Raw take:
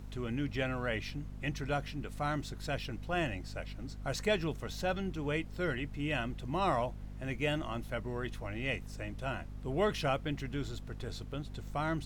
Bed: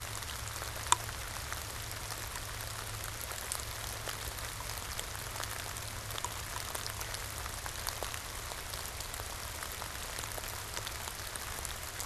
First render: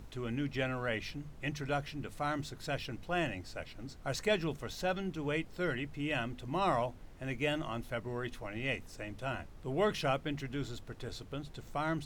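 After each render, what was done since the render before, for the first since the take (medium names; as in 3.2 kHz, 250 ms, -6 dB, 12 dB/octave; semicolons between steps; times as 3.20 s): hum notches 50/100/150/200/250 Hz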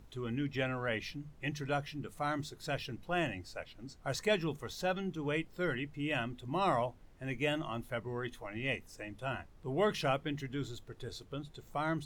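noise print and reduce 7 dB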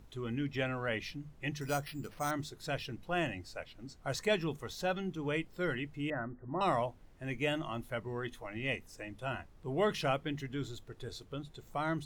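1.61–2.31 s: careless resampling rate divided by 6×, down none, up hold; 6.10–6.61 s: rippled Chebyshev low-pass 1.9 kHz, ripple 3 dB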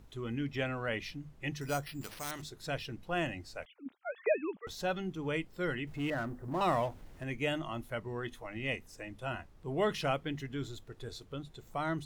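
2.01–2.42 s: spectrum-flattening compressor 2:1; 3.65–4.67 s: formants replaced by sine waves; 5.87–7.24 s: companding laws mixed up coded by mu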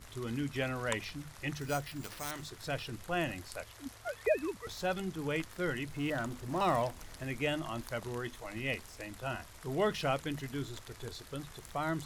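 add bed -13 dB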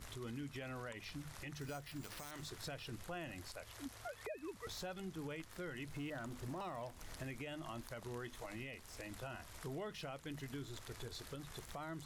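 compression 5:1, threshold -43 dBFS, peak gain reduction 17 dB; peak limiter -37 dBFS, peak gain reduction 8.5 dB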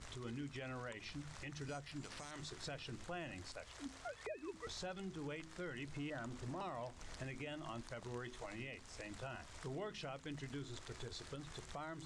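steep low-pass 8.8 kHz 36 dB/octave; de-hum 53.35 Hz, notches 7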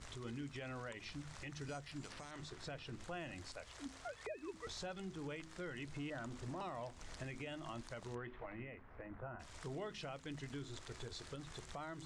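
2.12–3.00 s: treble shelf 4 kHz -6.5 dB; 8.14–9.39 s: low-pass 2.7 kHz -> 1.5 kHz 24 dB/octave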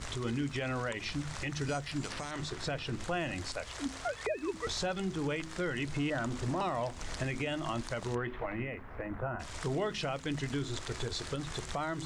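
trim +12 dB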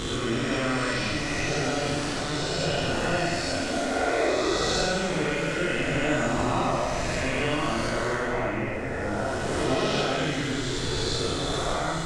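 reverse spectral sustain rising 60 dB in 2.45 s; plate-style reverb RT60 1.8 s, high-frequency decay 0.95×, pre-delay 0 ms, DRR -2.5 dB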